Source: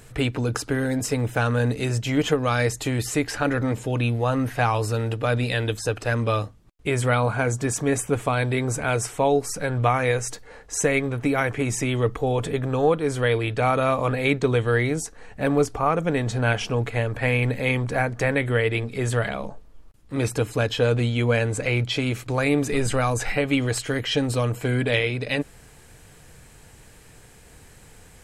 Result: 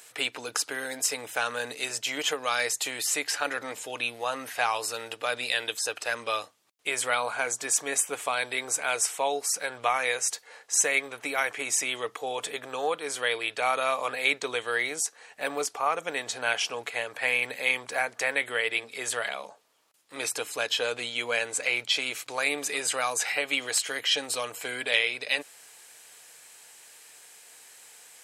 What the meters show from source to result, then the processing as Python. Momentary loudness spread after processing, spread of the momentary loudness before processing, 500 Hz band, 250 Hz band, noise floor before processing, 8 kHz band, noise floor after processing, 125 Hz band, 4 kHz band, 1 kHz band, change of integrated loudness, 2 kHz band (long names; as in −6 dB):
7 LU, 5 LU, −9.5 dB, −18.5 dB, −49 dBFS, +4.0 dB, −57 dBFS, −32.0 dB, +2.5 dB, −4.0 dB, −4.5 dB, −0.5 dB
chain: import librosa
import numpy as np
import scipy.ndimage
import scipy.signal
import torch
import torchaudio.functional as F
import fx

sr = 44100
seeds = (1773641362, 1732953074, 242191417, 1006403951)

y = scipy.signal.sosfilt(scipy.signal.butter(2, 1000.0, 'highpass', fs=sr, output='sos'), x)
y = fx.peak_eq(y, sr, hz=1400.0, db=-6.5, octaves=1.7)
y = y * librosa.db_to_amplitude(4.5)